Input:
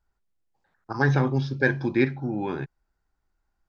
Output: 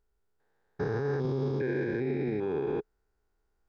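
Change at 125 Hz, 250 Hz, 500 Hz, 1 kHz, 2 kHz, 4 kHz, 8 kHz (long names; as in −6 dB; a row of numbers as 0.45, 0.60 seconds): −8.0 dB, −6.5 dB, −1.0 dB, −9.5 dB, −13.5 dB, −11.5 dB, can't be measured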